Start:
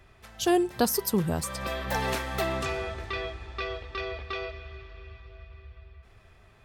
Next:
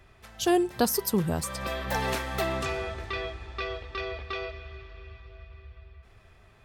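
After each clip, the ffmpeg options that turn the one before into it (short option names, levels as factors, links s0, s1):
-af anull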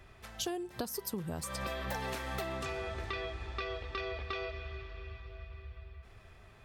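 -af "acompressor=threshold=0.02:ratio=12"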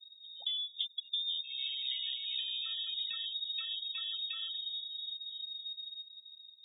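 -af "tiltshelf=f=1100:g=9.5,afftfilt=real='re*gte(hypot(re,im),0.02)':imag='im*gte(hypot(re,im),0.02)':win_size=1024:overlap=0.75,lowpass=f=3200:t=q:w=0.5098,lowpass=f=3200:t=q:w=0.6013,lowpass=f=3200:t=q:w=0.9,lowpass=f=3200:t=q:w=2.563,afreqshift=-3800,volume=0.501"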